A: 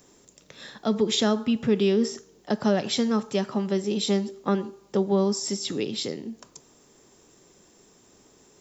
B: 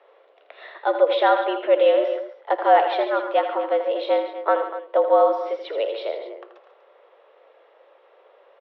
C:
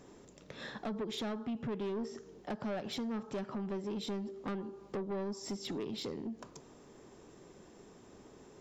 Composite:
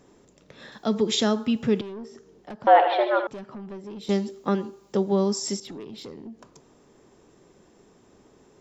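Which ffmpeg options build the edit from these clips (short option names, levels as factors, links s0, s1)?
-filter_complex "[0:a]asplit=2[s0][s1];[2:a]asplit=4[s2][s3][s4][s5];[s2]atrim=end=0.722[s6];[s0]atrim=start=0.718:end=1.812[s7];[s3]atrim=start=1.808:end=2.672[s8];[1:a]atrim=start=2.668:end=3.272[s9];[s4]atrim=start=3.268:end=4.092[s10];[s1]atrim=start=4.088:end=5.602[s11];[s5]atrim=start=5.598[s12];[s6][s7]acrossfade=d=0.004:c1=hsin:c2=hsin[s13];[s13][s8]acrossfade=d=0.004:c1=hsin:c2=hsin[s14];[s14][s9]acrossfade=d=0.004:c1=hsin:c2=hsin[s15];[s15][s10]acrossfade=d=0.004:c1=hsin:c2=hsin[s16];[s16][s11]acrossfade=d=0.004:c1=hsin:c2=hsin[s17];[s17][s12]acrossfade=d=0.004:c1=hsin:c2=hsin"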